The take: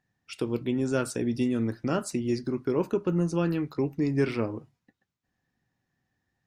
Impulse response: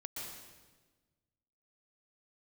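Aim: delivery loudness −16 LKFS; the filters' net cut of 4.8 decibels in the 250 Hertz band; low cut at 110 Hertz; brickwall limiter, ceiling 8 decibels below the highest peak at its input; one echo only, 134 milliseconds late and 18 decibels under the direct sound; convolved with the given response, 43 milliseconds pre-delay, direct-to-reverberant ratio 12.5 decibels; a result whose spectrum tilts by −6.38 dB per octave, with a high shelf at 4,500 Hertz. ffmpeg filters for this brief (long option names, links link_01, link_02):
-filter_complex "[0:a]highpass=110,equalizer=frequency=250:width_type=o:gain=-6,highshelf=frequency=4500:gain=-6.5,alimiter=limit=-23.5dB:level=0:latency=1,aecho=1:1:134:0.126,asplit=2[link_01][link_02];[1:a]atrim=start_sample=2205,adelay=43[link_03];[link_02][link_03]afir=irnorm=-1:irlink=0,volume=-11.5dB[link_04];[link_01][link_04]amix=inputs=2:normalize=0,volume=18dB"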